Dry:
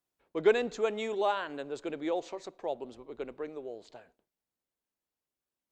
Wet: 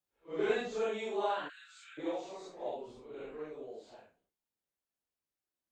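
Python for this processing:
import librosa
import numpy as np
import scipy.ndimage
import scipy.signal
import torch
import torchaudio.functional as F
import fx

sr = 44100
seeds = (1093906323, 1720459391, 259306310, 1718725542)

y = fx.phase_scramble(x, sr, seeds[0], window_ms=200)
y = fx.steep_highpass(y, sr, hz=1300.0, slope=72, at=(1.48, 1.97), fade=0.02)
y = y * librosa.db_to_amplitude(-4.0)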